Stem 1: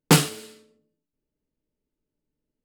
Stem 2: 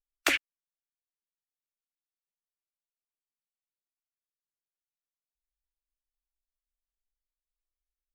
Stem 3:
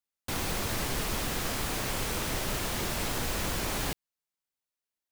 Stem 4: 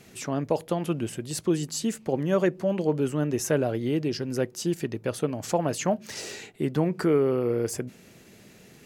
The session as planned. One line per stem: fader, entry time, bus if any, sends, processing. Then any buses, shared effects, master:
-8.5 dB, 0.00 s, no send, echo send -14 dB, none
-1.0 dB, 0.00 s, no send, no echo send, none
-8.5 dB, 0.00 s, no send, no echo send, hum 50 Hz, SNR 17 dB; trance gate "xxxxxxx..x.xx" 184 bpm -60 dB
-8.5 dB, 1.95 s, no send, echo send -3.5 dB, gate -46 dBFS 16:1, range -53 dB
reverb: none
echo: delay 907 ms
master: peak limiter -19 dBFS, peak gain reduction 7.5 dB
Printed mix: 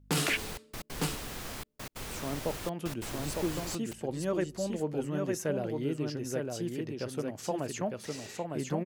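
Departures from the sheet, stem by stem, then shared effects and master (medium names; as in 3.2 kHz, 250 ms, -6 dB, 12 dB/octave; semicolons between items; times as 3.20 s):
stem 1 -8.5 dB -> -1.0 dB; stem 4: missing gate -46 dBFS 16:1, range -53 dB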